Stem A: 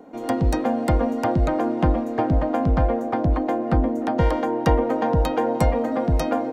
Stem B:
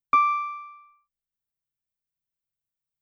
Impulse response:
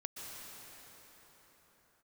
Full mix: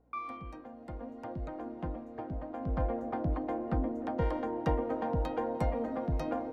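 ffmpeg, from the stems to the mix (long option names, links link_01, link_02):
-filter_complex "[0:a]volume=-7.5dB,afade=type=in:start_time=0.76:duration=0.63:silence=0.446684,afade=type=in:start_time=2.53:duration=0.3:silence=0.446684,asplit=2[link_01][link_02];[link_02]volume=-19dB[link_03];[1:a]highpass=1200,afwtdn=0.00794,aeval=exprs='val(0)+0.00251*(sin(2*PI*60*n/s)+sin(2*PI*2*60*n/s)/2+sin(2*PI*3*60*n/s)/3+sin(2*PI*4*60*n/s)/4+sin(2*PI*5*60*n/s)/5)':channel_layout=same,volume=-11.5dB[link_04];[2:a]atrim=start_sample=2205[link_05];[link_03][link_05]afir=irnorm=-1:irlink=0[link_06];[link_01][link_04][link_06]amix=inputs=3:normalize=0,lowpass=frequency=2700:poles=1,flanger=delay=1.8:depth=5:regen=87:speed=0.73:shape=sinusoidal"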